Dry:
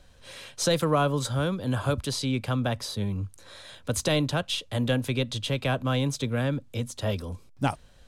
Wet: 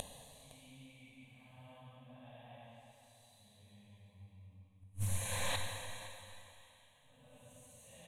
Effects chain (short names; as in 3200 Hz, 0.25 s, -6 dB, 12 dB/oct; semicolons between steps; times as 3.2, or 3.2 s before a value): upward compressor, threshold -33 dBFS; low shelf 230 Hz -6.5 dB; Paulstretch 4.1×, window 0.25 s, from 2.09; flipped gate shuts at -36 dBFS, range -41 dB; fixed phaser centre 1400 Hz, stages 6; on a send: echo 0.511 s -17 dB; on the sum: plate-style reverb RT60 2.8 s, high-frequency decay 0.95×, DRR 2 dB; Doppler distortion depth 0.24 ms; gain +15.5 dB